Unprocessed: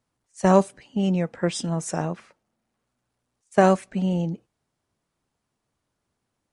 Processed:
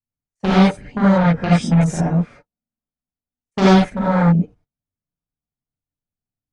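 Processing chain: RIAA curve playback; gate -46 dBFS, range -27 dB; bass shelf 85 Hz +2.5 dB; level held to a coarse grid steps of 15 dB; in parallel at -8 dB: sine folder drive 13 dB, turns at -9.5 dBFS; on the sum: gated-style reverb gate 110 ms rising, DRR -8 dB; trim -5.5 dB

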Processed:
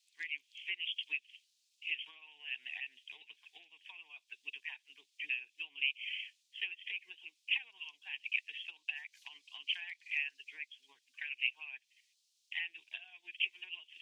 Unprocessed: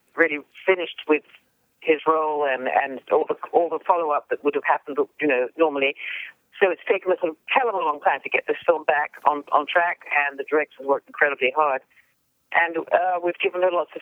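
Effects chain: inverse Chebyshev high-pass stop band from 1.4 kHz, stop band 50 dB; distance through air 100 m; trim +6.5 dB

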